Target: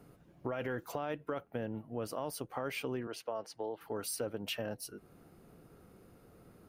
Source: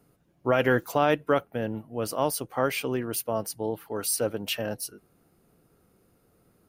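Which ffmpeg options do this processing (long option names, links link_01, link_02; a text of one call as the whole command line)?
ffmpeg -i in.wav -filter_complex "[0:a]highshelf=frequency=4400:gain=-7.5,alimiter=limit=-18dB:level=0:latency=1:release=19,asettb=1/sr,asplit=3[link_01][link_02][link_03];[link_01]atrim=end=3.074[link_04];[link_02]atrim=start=3.07:end=3.81,asetpts=PTS-STARTPTS,afade=type=in:duration=0.004:curve=qsin,afade=type=out:start_time=0.736:duration=0.004:curve=qsin,acrossover=split=360 6500:gain=0.178 1 0.1[link_05][link_06][link_07];[link_05][link_06][link_07]amix=inputs=3:normalize=0[link_08];[link_03]atrim=start=3.806[link_09];[link_04][link_08]acrossfade=duration=0.004:curve1=hsin:curve2=qsin[link_10];[link_10][link_09]acrossfade=duration=0.004:curve1=qsin:curve2=hsin,acompressor=threshold=-47dB:ratio=2.5,volume=5.5dB" out.wav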